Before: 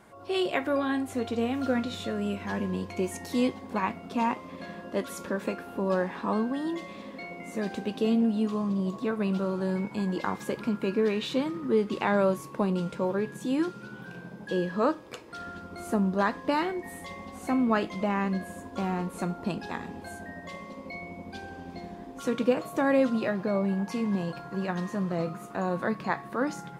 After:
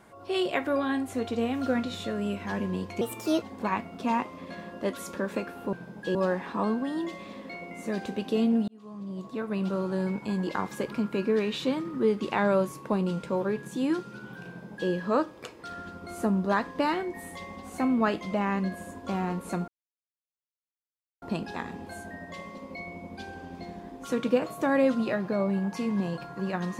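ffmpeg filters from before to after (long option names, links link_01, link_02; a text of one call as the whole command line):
ffmpeg -i in.wav -filter_complex "[0:a]asplit=7[link_01][link_02][link_03][link_04][link_05][link_06][link_07];[link_01]atrim=end=3.014[link_08];[link_02]atrim=start=3.01:end=3.53,asetpts=PTS-STARTPTS,asetrate=56007,aresample=44100[link_09];[link_03]atrim=start=3.526:end=5.842[link_10];[link_04]atrim=start=14.168:end=14.592[link_11];[link_05]atrim=start=5.838:end=8.37,asetpts=PTS-STARTPTS,afade=type=out:start_time=2.528:duration=0.004:curve=hsin[link_12];[link_06]atrim=start=8.37:end=19.37,asetpts=PTS-STARTPTS,afade=type=in:duration=1.11,afade=type=out:start_time=10.996:duration=0.004:curve=hsin,apad=pad_dur=1.54[link_13];[link_07]atrim=start=19.37,asetpts=PTS-STARTPTS,afade=type=in:duration=0.004:curve=hsin[link_14];[link_08][link_09]acrossfade=duration=0.004:curve1=hsin:curve2=hsin[link_15];[link_15][link_10]acrossfade=duration=0.004:curve1=hsin:curve2=hsin[link_16];[link_16][link_11]acrossfade=duration=0.004:curve1=hsin:curve2=hsin[link_17];[link_12][link_13][link_14]concat=n=3:v=0:a=1[link_18];[link_17][link_18]acrossfade=duration=0.004:curve1=hsin:curve2=hsin" out.wav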